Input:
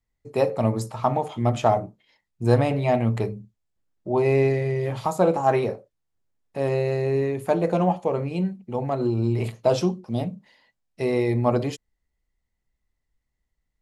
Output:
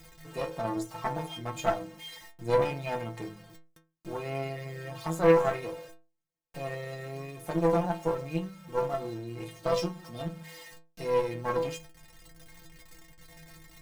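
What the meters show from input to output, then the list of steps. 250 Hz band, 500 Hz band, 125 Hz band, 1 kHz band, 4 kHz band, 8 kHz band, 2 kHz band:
-9.5 dB, -6.5 dB, -12.0 dB, -7.0 dB, -2.5 dB, no reading, -3.5 dB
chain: jump at every zero crossing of -33 dBFS; inharmonic resonator 160 Hz, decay 0.37 s, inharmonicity 0.008; Chebyshev shaper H 3 -21 dB, 6 -18 dB, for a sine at -14.5 dBFS; trim +6.5 dB

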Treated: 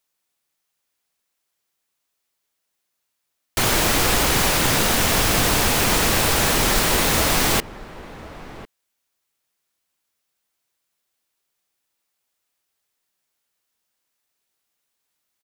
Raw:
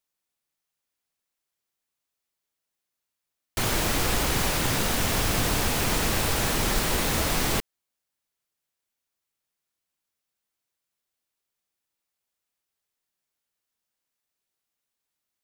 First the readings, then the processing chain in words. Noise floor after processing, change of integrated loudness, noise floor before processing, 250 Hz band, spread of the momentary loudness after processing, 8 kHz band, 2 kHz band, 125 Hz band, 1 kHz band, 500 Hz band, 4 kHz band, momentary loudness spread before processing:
-77 dBFS, +7.0 dB, -85 dBFS, +5.5 dB, 2 LU, +7.5 dB, +7.5 dB, +4.0 dB, +7.5 dB, +6.5 dB, +7.5 dB, 2 LU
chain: bass shelf 250 Hz -4.5 dB; echo from a far wall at 180 m, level -16 dB; trim +7.5 dB

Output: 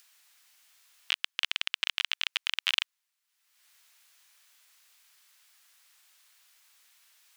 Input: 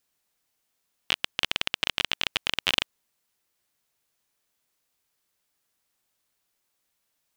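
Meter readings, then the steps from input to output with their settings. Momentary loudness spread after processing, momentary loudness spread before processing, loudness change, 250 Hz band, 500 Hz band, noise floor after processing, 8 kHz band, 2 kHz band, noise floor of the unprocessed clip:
4 LU, 4 LU, -3.0 dB, under -25 dB, -18.0 dB, -82 dBFS, -4.0 dB, -3.0 dB, -77 dBFS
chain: high-pass 1.4 kHz 12 dB/octave; treble shelf 6.4 kHz -5.5 dB; upward compressor, threshold -45 dBFS; trim -1.5 dB

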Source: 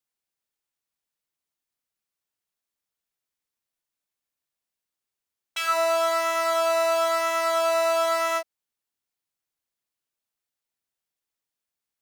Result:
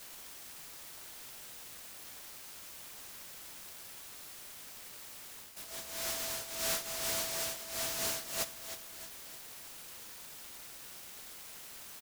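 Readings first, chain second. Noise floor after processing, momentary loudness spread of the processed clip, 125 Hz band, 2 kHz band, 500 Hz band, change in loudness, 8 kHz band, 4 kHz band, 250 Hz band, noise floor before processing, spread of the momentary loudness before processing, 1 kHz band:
-50 dBFS, 13 LU, no reading, -12.5 dB, -21.0 dB, -16.5 dB, 0.0 dB, -5.0 dB, -8.5 dB, under -85 dBFS, 5 LU, -22.0 dB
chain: zero-crossing glitches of -27 dBFS; low-pass 1.7 kHz 6 dB/octave; comb 3.1 ms, depth 68%; reverse; compression 8:1, threshold -33 dBFS, peak gain reduction 15.5 dB; reverse; chorus voices 4, 0.18 Hz, delay 12 ms, depth 3.9 ms; static phaser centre 350 Hz, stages 6; on a send: feedback delay 311 ms, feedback 52%, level -11.5 dB; on the sum: delay time shaken by noise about 5.6 kHz, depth 0.38 ms; trim +2 dB

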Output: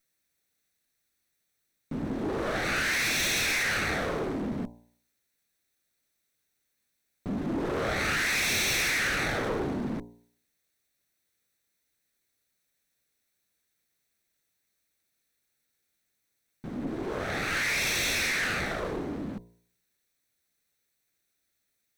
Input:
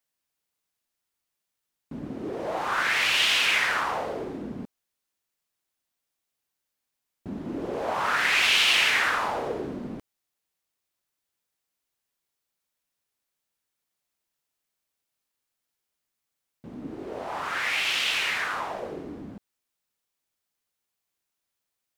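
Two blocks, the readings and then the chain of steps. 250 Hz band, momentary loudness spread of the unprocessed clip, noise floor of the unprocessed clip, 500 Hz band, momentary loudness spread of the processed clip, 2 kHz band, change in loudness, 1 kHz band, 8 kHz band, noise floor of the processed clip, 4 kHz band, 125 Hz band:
+4.0 dB, 20 LU, -84 dBFS, +0.5 dB, 12 LU, -3.0 dB, -4.0 dB, -6.0 dB, +3.0 dB, -79 dBFS, -6.5 dB, +7.0 dB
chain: comb filter that takes the minimum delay 0.49 ms; de-hum 58.89 Hz, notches 17; in parallel at +1 dB: peak limiter -21.5 dBFS, peak gain reduction 9.5 dB; on the sum: saturation -25 dBFS, distortion -8 dB

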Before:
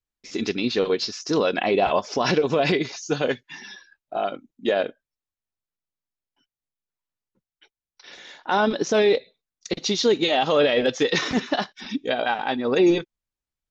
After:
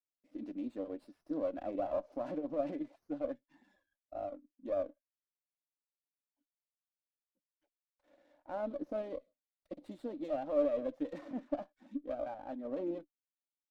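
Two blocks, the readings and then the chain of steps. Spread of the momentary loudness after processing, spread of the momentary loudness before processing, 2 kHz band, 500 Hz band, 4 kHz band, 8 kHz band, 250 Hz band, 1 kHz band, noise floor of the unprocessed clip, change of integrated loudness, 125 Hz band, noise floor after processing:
12 LU, 12 LU, -31.0 dB, -15.5 dB, under -35 dB, no reading, -14.5 dB, -20.0 dB, under -85 dBFS, -16.5 dB, -23.5 dB, under -85 dBFS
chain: two resonant band-passes 410 Hz, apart 0.97 oct; sliding maximum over 5 samples; trim -8 dB

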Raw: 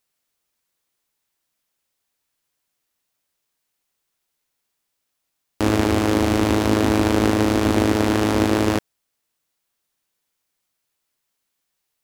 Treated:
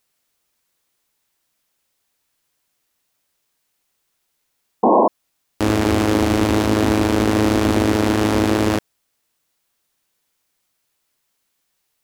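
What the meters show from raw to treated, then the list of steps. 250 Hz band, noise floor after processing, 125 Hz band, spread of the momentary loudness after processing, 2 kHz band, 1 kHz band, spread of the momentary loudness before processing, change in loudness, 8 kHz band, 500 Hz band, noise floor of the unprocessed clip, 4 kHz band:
+2.0 dB, -72 dBFS, +1.5 dB, 4 LU, +1.5 dB, +4.5 dB, 3 LU, +1.5 dB, +1.5 dB, +3.0 dB, -77 dBFS, +1.5 dB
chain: painted sound noise, 4.83–5.08 s, 200–1100 Hz -9 dBFS; peak limiter -11 dBFS, peak gain reduction 12 dB; trim +5.5 dB

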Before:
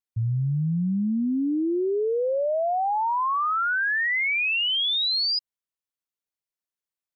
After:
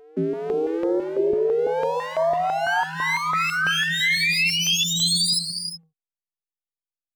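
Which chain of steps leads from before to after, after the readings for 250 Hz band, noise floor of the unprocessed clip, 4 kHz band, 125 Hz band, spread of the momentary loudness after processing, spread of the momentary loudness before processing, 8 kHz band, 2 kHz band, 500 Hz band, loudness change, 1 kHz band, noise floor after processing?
-3.5 dB, under -85 dBFS, +3.0 dB, -7.0 dB, 7 LU, 4 LU, no reading, +3.0 dB, +4.5 dB, +2.5 dB, +0.5 dB, under -85 dBFS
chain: comb filter that takes the minimum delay 3.6 ms; peaking EQ 920 Hz -12 dB 0.2 oct; compression, threshold -27 dBFS, peak gain reduction 5 dB; frequency shift +160 Hz; hysteresis with a dead band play -58.5 dBFS; reverse echo 497 ms -24 dB; gated-style reverb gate 390 ms rising, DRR 7.5 dB; step-sequenced notch 6 Hz 230–2600 Hz; trim +9 dB

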